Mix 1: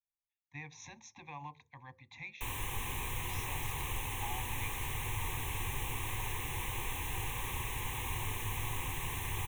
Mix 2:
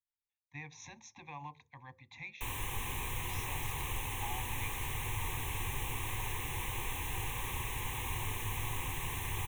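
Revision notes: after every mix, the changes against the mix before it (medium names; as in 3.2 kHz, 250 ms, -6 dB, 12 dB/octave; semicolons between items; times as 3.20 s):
no change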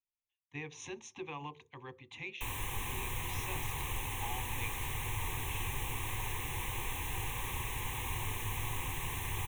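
speech: remove static phaser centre 2 kHz, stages 8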